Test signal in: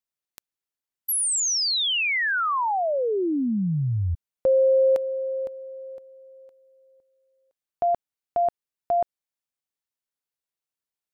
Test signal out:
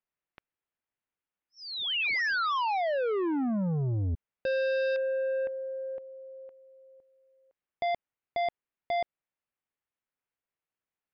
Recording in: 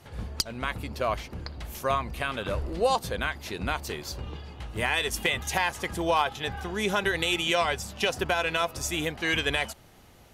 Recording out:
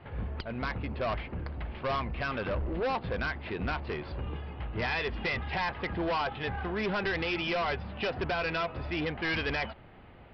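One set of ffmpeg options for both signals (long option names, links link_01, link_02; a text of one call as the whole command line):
ffmpeg -i in.wav -af "lowpass=frequency=2700:width=0.5412,lowpass=frequency=2700:width=1.3066,aresample=11025,asoftclip=type=tanh:threshold=-29.5dB,aresample=44100,volume=2.5dB" out.wav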